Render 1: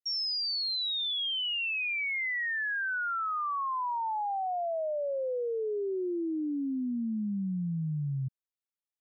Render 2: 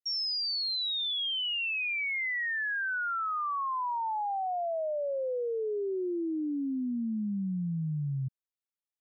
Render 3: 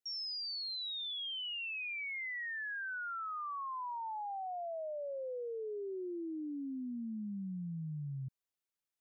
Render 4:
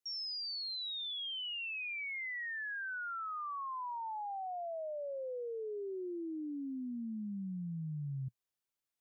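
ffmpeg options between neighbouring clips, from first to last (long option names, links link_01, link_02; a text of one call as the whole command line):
ffmpeg -i in.wav -af anull out.wav
ffmpeg -i in.wav -af "alimiter=level_in=14.5dB:limit=-24dB:level=0:latency=1:release=13,volume=-14.5dB,volume=1dB" out.wav
ffmpeg -i in.wav -af "equalizer=frequency=120:width_type=o:width=0.5:gain=2.5" out.wav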